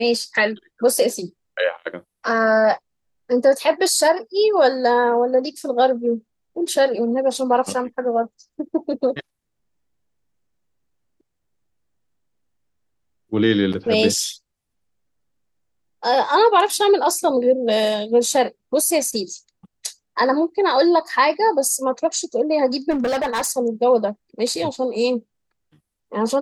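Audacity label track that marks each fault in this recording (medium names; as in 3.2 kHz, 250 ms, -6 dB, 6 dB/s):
22.900000	23.490000	clipped -18 dBFS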